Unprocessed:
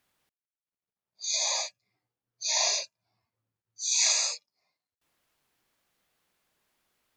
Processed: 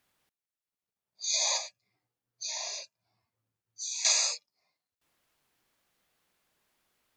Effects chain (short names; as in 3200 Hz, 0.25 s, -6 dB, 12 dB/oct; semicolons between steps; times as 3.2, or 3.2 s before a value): 1.57–4.05 compressor 5:1, threshold -35 dBFS, peak gain reduction 13 dB